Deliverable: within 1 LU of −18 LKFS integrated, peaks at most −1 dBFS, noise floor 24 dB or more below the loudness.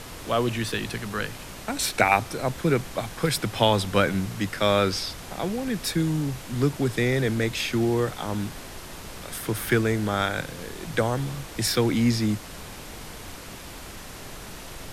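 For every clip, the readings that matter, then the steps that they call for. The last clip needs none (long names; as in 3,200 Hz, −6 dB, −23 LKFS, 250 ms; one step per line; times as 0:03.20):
background noise floor −41 dBFS; target noise floor −50 dBFS; integrated loudness −25.5 LKFS; sample peak −4.0 dBFS; target loudness −18.0 LKFS
→ noise reduction from a noise print 9 dB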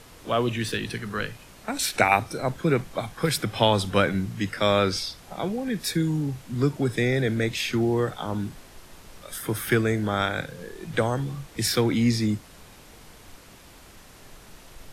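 background noise floor −49 dBFS; target noise floor −50 dBFS
→ noise reduction from a noise print 6 dB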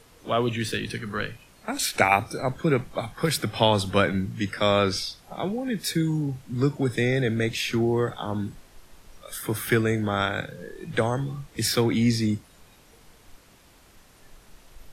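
background noise floor −55 dBFS; integrated loudness −25.5 LKFS; sample peak −4.0 dBFS; target loudness −18.0 LKFS
→ level +7.5 dB
brickwall limiter −1 dBFS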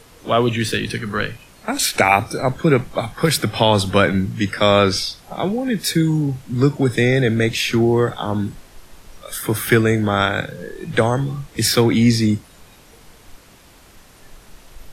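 integrated loudness −18.5 LKFS; sample peak −1.0 dBFS; background noise floor −47 dBFS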